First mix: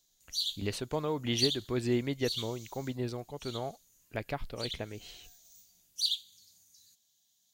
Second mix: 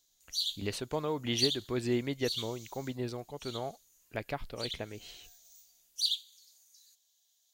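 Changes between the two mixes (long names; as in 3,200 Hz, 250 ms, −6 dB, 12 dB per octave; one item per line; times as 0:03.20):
background: add high-pass filter 390 Hz 24 dB per octave
master: add low-shelf EQ 200 Hz −3.5 dB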